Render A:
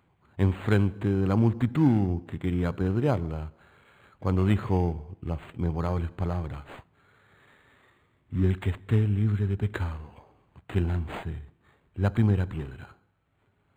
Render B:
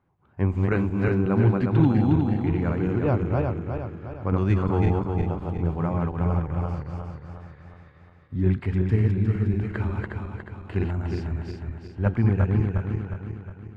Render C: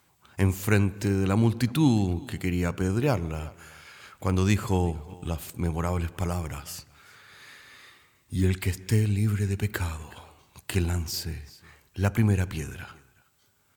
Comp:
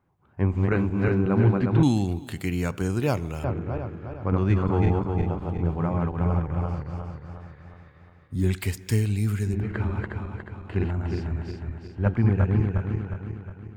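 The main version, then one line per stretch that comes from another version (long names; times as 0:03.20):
B
0:01.83–0:03.44: punch in from C
0:08.42–0:09.51: punch in from C, crossfade 0.24 s
not used: A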